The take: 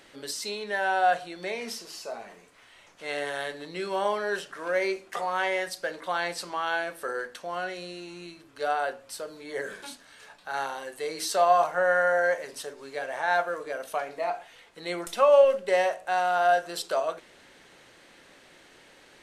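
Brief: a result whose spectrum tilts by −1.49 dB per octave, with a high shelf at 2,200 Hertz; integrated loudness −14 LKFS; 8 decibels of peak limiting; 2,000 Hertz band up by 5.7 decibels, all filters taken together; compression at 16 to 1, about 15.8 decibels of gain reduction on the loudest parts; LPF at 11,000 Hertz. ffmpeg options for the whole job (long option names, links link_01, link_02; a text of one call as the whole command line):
ffmpeg -i in.wav -af "lowpass=11000,equalizer=frequency=2000:width_type=o:gain=5.5,highshelf=frequency=2200:gain=4.5,acompressor=threshold=-29dB:ratio=16,volume=22.5dB,alimiter=limit=-4dB:level=0:latency=1" out.wav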